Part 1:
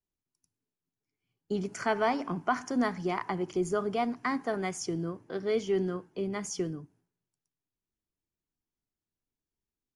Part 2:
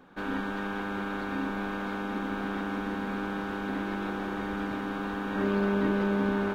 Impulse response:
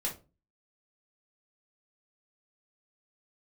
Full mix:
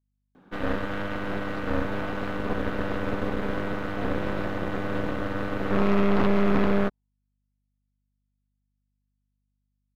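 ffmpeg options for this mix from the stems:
-filter_complex "[0:a]bandpass=frequency=870:width_type=q:width=2.1:csg=0,aeval=exprs='val(0)+0.000708*(sin(2*PI*50*n/s)+sin(2*PI*2*50*n/s)/2+sin(2*PI*3*50*n/s)/3+sin(2*PI*4*50*n/s)/4+sin(2*PI*5*50*n/s)/5)':channel_layout=same,volume=-13dB[link_01];[1:a]highpass=120,lowshelf=frequency=460:gain=10,aeval=exprs='0.316*(cos(1*acos(clip(val(0)/0.316,-1,1)))-cos(1*PI/2))+0.141*(cos(6*acos(clip(val(0)/0.316,-1,1)))-cos(6*PI/2))':channel_layout=same,adelay=350,volume=-5.5dB[link_02];[link_01][link_02]amix=inputs=2:normalize=0"

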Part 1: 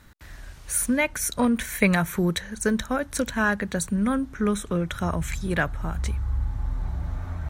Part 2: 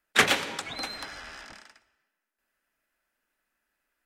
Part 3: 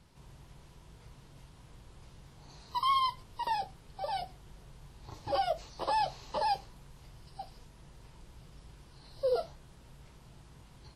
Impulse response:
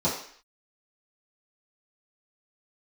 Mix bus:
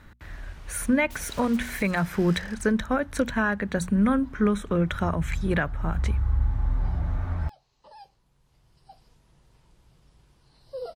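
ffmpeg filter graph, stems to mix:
-filter_complex "[0:a]bass=frequency=250:gain=1,treble=frequency=4000:gain=-11,bandreject=frequency=60:width_type=h:width=6,bandreject=frequency=120:width_type=h:width=6,bandreject=frequency=180:width_type=h:width=6,bandreject=frequency=240:width_type=h:width=6,volume=2.5dB,asplit=2[link_01][link_02];[1:a]acompressor=threshold=-29dB:ratio=6,aeval=exprs='0.0106*(abs(mod(val(0)/0.0106+3,4)-2)-1)':channel_layout=same,adelay=950,volume=0dB[link_03];[2:a]adelay=1500,volume=-6dB[link_04];[link_02]apad=whole_len=549072[link_05];[link_04][link_05]sidechaincompress=threshold=-44dB:ratio=4:attack=6.4:release=1050[link_06];[link_01][link_03][link_06]amix=inputs=3:normalize=0,alimiter=limit=-12.5dB:level=0:latency=1:release=337"

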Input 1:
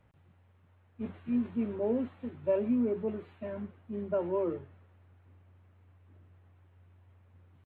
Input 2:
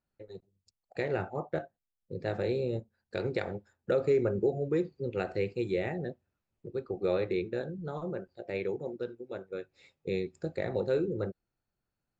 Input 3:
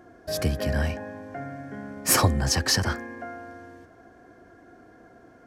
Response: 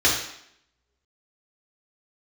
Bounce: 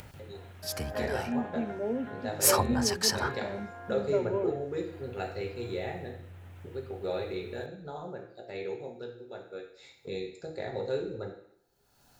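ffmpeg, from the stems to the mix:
-filter_complex "[0:a]acompressor=mode=upward:threshold=-33dB:ratio=2.5,volume=-2dB[link_01];[1:a]equalizer=frequency=860:width_type=o:width=0.77:gain=7,acompressor=mode=upward:threshold=-35dB:ratio=2.5,volume=-9dB,asplit=2[link_02][link_03];[link_03]volume=-17dB[link_04];[2:a]acrossover=split=2400[link_05][link_06];[link_05]aeval=exprs='val(0)*(1-0.7/2+0.7/2*cos(2*PI*1.7*n/s))':channel_layout=same[link_07];[link_06]aeval=exprs='val(0)*(1-0.7/2-0.7/2*cos(2*PI*1.7*n/s))':channel_layout=same[link_08];[link_07][link_08]amix=inputs=2:normalize=0,equalizer=frequency=1000:width=1.1:gain=14,adelay=350,volume=-10.5dB[link_09];[3:a]atrim=start_sample=2205[link_10];[link_04][link_10]afir=irnorm=-1:irlink=0[link_11];[link_01][link_02][link_09][link_11]amix=inputs=4:normalize=0,highshelf=frequency=2800:gain=10,bandreject=frequency=1100:width=10"

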